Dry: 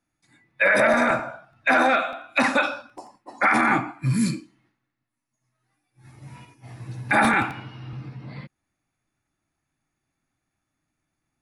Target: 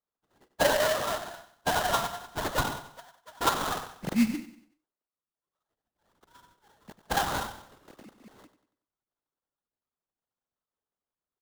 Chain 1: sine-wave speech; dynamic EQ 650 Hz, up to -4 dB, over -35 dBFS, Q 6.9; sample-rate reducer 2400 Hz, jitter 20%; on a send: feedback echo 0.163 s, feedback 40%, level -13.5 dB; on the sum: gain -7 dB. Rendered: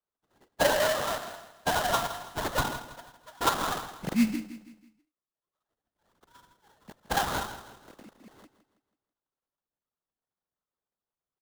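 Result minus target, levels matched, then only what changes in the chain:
echo 69 ms late
change: feedback echo 94 ms, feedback 40%, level -13.5 dB

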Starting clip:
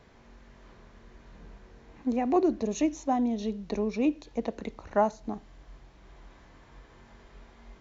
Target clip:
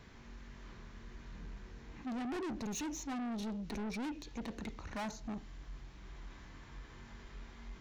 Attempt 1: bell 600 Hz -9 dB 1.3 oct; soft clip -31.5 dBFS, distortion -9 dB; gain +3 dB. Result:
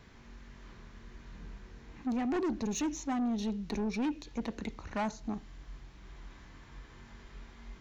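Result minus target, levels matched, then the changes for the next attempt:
soft clip: distortion -6 dB
change: soft clip -40.5 dBFS, distortion -3 dB

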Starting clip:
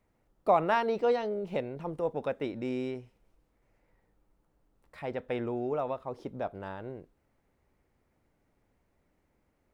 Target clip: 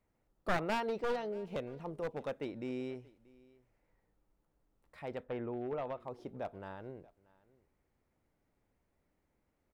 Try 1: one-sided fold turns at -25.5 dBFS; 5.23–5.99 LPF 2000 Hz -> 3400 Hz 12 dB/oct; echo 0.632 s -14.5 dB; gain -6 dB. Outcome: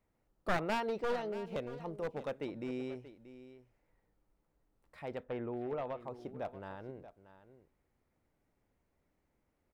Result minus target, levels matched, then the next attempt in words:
echo-to-direct +9 dB
one-sided fold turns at -25.5 dBFS; 5.23–5.99 LPF 2000 Hz -> 3400 Hz 12 dB/oct; echo 0.632 s -23.5 dB; gain -6 dB

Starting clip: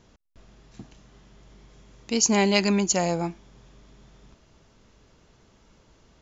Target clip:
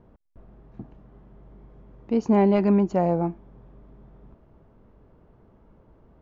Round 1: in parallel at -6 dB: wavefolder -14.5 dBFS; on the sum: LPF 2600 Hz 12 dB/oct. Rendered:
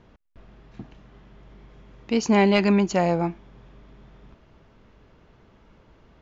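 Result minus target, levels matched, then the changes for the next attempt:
2000 Hz band +11.5 dB
change: LPF 930 Hz 12 dB/oct

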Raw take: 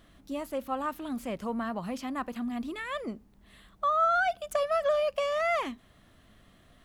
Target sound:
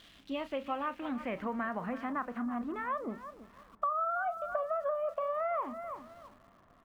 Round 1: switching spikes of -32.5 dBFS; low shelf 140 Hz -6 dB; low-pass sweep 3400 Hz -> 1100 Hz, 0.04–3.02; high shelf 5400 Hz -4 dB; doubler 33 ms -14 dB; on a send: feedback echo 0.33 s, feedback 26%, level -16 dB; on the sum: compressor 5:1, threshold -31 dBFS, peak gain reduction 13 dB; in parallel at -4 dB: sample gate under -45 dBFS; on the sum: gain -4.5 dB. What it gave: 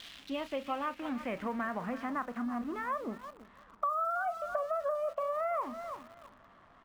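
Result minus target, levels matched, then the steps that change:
switching spikes: distortion +10 dB; sample gate: distortion +8 dB
change: switching spikes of -43 dBFS; change: sample gate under -52 dBFS

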